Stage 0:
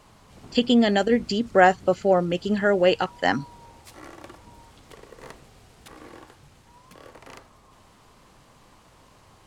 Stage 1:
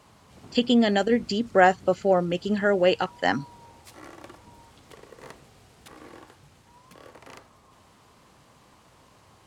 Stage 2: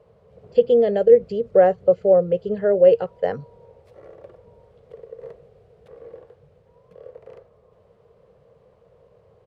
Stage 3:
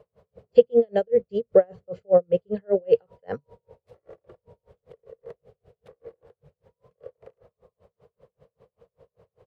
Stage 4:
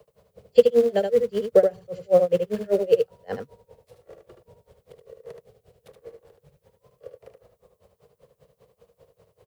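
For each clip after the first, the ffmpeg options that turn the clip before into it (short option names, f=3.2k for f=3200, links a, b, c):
-af "highpass=60,volume=-1.5dB"
-af "firequalizer=gain_entry='entry(180,0);entry(280,-17);entry(460,14);entry(830,-9);entry(6800,-24)':delay=0.05:min_phase=1"
-af "aeval=exprs='val(0)*pow(10,-39*(0.5-0.5*cos(2*PI*5.1*n/s))/20)':c=same,volume=2dB"
-filter_complex "[0:a]acrossover=split=160|290|1600[a][b][c][d];[b]acrusher=bits=2:mode=log:mix=0:aa=0.000001[e];[d]crystalizer=i=3.5:c=0[f];[a][e][c][f]amix=inputs=4:normalize=0,aecho=1:1:75:0.501"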